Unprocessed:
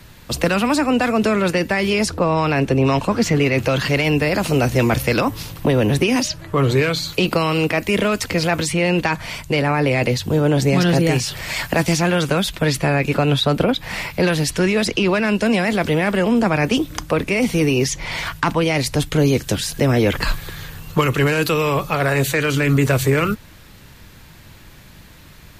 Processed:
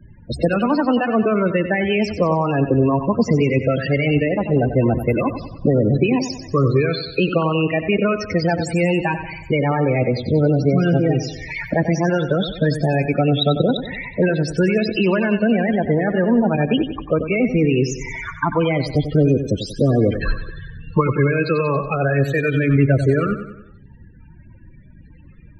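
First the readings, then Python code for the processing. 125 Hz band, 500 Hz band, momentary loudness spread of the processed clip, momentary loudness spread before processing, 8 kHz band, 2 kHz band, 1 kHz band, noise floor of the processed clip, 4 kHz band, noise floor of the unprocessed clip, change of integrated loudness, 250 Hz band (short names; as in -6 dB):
+0.5 dB, +0.5 dB, 6 LU, 5 LU, -12.5 dB, -3.5 dB, -2.0 dB, -44 dBFS, -6.5 dB, -43 dBFS, -0.5 dB, +0.5 dB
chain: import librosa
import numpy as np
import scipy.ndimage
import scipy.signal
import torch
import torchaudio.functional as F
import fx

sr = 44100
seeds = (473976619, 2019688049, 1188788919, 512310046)

y = fx.high_shelf(x, sr, hz=11000.0, db=-5.0)
y = fx.transient(y, sr, attack_db=2, sustain_db=-3)
y = fx.spec_topn(y, sr, count=16)
y = fx.echo_feedback(y, sr, ms=93, feedback_pct=49, wet_db=-10.0)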